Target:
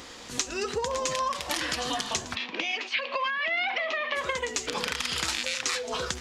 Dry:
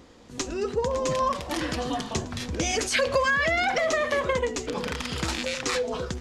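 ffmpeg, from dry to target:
ffmpeg -i in.wav -filter_complex "[0:a]tiltshelf=frequency=790:gain=-8,acompressor=threshold=-35dB:ratio=5,asplit=3[link_01][link_02][link_03];[link_01]afade=type=out:start_time=2.34:duration=0.02[link_04];[link_02]highpass=frequency=230:width=0.5412,highpass=frequency=230:width=1.3066,equalizer=frequency=470:width_type=q:width=4:gain=-6,equalizer=frequency=980:width_type=q:width=4:gain=3,equalizer=frequency=1500:width_type=q:width=4:gain=-7,equalizer=frequency=2600:width_type=q:width=4:gain=5,lowpass=frequency=3600:width=0.5412,lowpass=frequency=3600:width=1.3066,afade=type=in:start_time=2.34:duration=0.02,afade=type=out:start_time=4.15:duration=0.02[link_05];[link_03]afade=type=in:start_time=4.15:duration=0.02[link_06];[link_04][link_05][link_06]amix=inputs=3:normalize=0,volume=7.5dB" out.wav

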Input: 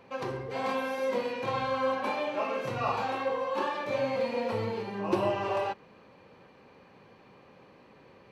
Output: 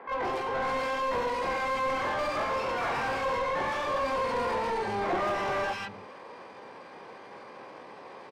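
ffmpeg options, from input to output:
ffmpeg -i in.wav -filter_complex "[0:a]acrossover=split=160|1300[link_01][link_02][link_03];[link_03]adelay=150[link_04];[link_01]adelay=320[link_05];[link_05][link_02][link_04]amix=inputs=3:normalize=0,asplit=2[link_06][link_07];[link_07]asetrate=88200,aresample=44100,atempo=0.5,volume=-1dB[link_08];[link_06][link_08]amix=inputs=2:normalize=0,asplit=2[link_09][link_10];[link_10]highpass=frequency=720:poles=1,volume=27dB,asoftclip=type=tanh:threshold=-13dB[link_11];[link_09][link_11]amix=inputs=2:normalize=0,lowpass=frequency=1100:poles=1,volume=-6dB,volume=-7dB" out.wav

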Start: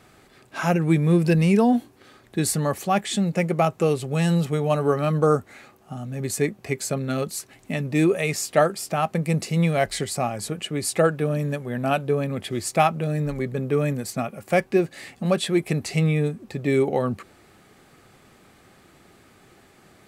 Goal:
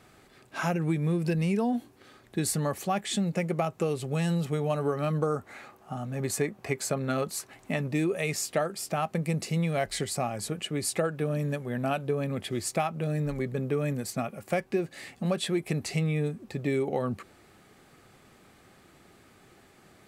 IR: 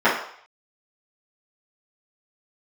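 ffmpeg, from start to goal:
-filter_complex "[0:a]asettb=1/sr,asplit=3[link_01][link_02][link_03];[link_01]atrim=end=5.364[link_04];[link_02]atrim=start=5.36:end=7.88,asetpts=PTS-STARTPTS,afade=type=in:duration=0.004:curve=qsin,afade=type=out:start_time=2.516:duration=0.004:curve=qsin,equalizer=frequency=990:width_type=o:width=2:gain=6.5[link_05];[link_03]atrim=start=7.876[link_06];[link_04][link_05]acrossfade=duration=0.004:curve1=hsin:curve2=qsin[link_07];[link_07][link_06]acrossfade=duration=0.004:curve1=qsin:curve2=hsin,acompressor=threshold=-20dB:ratio=6,volume=-3.5dB"

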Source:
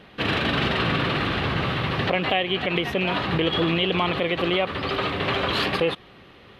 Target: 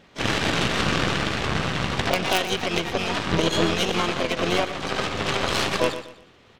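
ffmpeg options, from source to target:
ffmpeg -i in.wav -filter_complex "[0:a]asplit=4[link_01][link_02][link_03][link_04];[link_02]asetrate=22050,aresample=44100,atempo=2,volume=-10dB[link_05];[link_03]asetrate=55563,aresample=44100,atempo=0.793701,volume=-5dB[link_06];[link_04]asetrate=88200,aresample=44100,atempo=0.5,volume=-10dB[link_07];[link_01][link_05][link_06][link_07]amix=inputs=4:normalize=0,aeval=exprs='0.473*(cos(1*acos(clip(val(0)/0.473,-1,1)))-cos(1*PI/2))+0.133*(cos(4*acos(clip(val(0)/0.473,-1,1)))-cos(4*PI/2))+0.0668*(cos(6*acos(clip(val(0)/0.473,-1,1)))-cos(6*PI/2))+0.0376*(cos(7*acos(clip(val(0)/0.473,-1,1)))-cos(7*PI/2))+0.0211*(cos(8*acos(clip(val(0)/0.473,-1,1)))-cos(8*PI/2))':channel_layout=same,aecho=1:1:122|244|366:0.251|0.0804|0.0257" out.wav

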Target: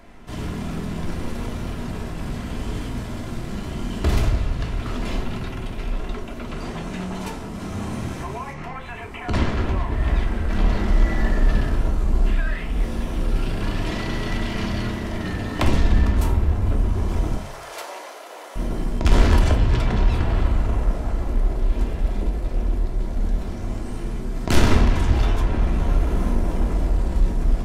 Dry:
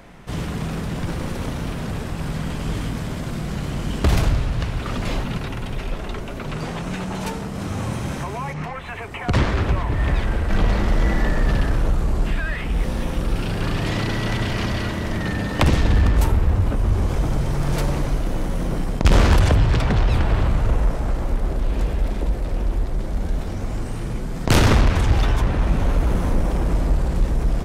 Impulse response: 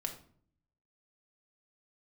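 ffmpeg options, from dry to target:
-filter_complex "[0:a]asettb=1/sr,asplit=3[link_01][link_02][link_03];[link_01]atrim=end=17.354[link_04];[link_02]atrim=start=17.35:end=18.56,asetpts=PTS-STARTPTS,afade=type=in:duration=0.004:curve=qsin,afade=type=out:start_time=1.206:duration=0.004:curve=qsin,highpass=frequency=540:width=0.5412,highpass=frequency=540:width=1.3066[link_05];[link_03]atrim=start=18.556[link_06];[link_04][link_05]acrossfade=duration=0.004:curve1=hsin:curve2=qsin[link_07];[link_07][link_06]acrossfade=duration=0.004:curve1=qsin:curve2=hsin[link_08];[1:a]atrim=start_sample=2205,asetrate=66150,aresample=44100[link_09];[link_08][link_09]afir=irnorm=-1:irlink=0"

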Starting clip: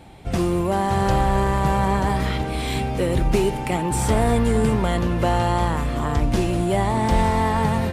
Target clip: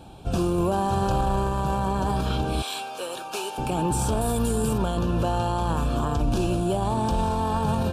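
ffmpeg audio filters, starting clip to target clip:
ffmpeg -i in.wav -filter_complex "[0:a]asettb=1/sr,asplit=3[link_01][link_02][link_03];[link_01]atrim=end=0.584[link_04];[link_02]atrim=start=0.58:end=1.49,asetpts=PTS-STARTPTS,afade=type=in:duration=0.004:curve=qsin,afade=type=out:start_time=0.906:duration=0.004:curve=qsin,acontrast=70[link_05];[link_03]atrim=start=1.486[link_06];[link_04][link_05]acrossfade=duration=0.004:curve1=hsin:curve2=qsin[link_07];[link_07][link_06]acrossfade=duration=0.004:curve1=qsin:curve2=hsin,asettb=1/sr,asplit=3[link_08][link_09][link_10];[link_08]atrim=end=2.624[link_11];[link_09]atrim=start=2.62:end=3.58,asetpts=PTS-STARTPTS,afade=type=in:duration=0.004:curve=qsin,afade=type=out:start_time=0.956:duration=0.004:curve=qsin,highpass=860[link_12];[link_10]atrim=start=3.576[link_13];[link_11][link_12]acrossfade=duration=0.004:curve1=hsin:curve2=qsin[link_14];[link_14][link_13]acrossfade=duration=0.004:curve1=qsin:curve2=hsin,asettb=1/sr,asplit=3[link_15][link_16][link_17];[link_15]atrim=end=4.214[link_18];[link_16]atrim=start=4.21:end=4.78,asetpts=PTS-STARTPTS,afade=type=in:duration=0.004:curve=qsin,afade=type=out:start_time=0.566:duration=0.004:curve=qsin,aemphasis=mode=production:type=50fm[link_19];[link_17]atrim=start=4.776[link_20];[link_18][link_19]acrossfade=duration=0.004:curve1=hsin:curve2=qsin[link_21];[link_21][link_20]acrossfade=duration=0.004:curve1=qsin:curve2=hsin,alimiter=limit=-16dB:level=0:latency=1:release=27,asuperstop=centerf=2000:order=4:qfactor=2.4" out.wav

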